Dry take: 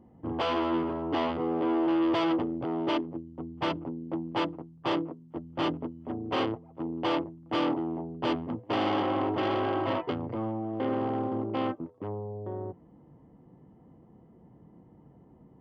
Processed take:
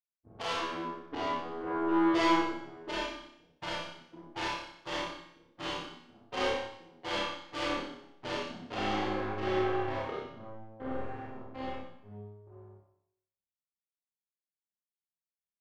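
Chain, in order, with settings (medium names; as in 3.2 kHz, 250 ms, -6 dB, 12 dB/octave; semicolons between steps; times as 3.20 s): expander on every frequency bin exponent 2; power-law waveshaper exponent 2; on a send: flutter echo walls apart 5 m, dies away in 0.4 s; on the sum: Schroeder reverb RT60 0.75 s, combs from 31 ms, DRR -6 dB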